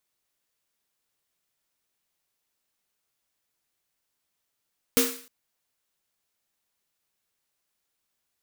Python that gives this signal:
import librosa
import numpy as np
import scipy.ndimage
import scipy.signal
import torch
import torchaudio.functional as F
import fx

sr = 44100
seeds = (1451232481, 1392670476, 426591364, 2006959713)

y = fx.drum_snare(sr, seeds[0], length_s=0.31, hz=260.0, second_hz=470.0, noise_db=0.5, noise_from_hz=1000.0, decay_s=0.39, noise_decay_s=0.5)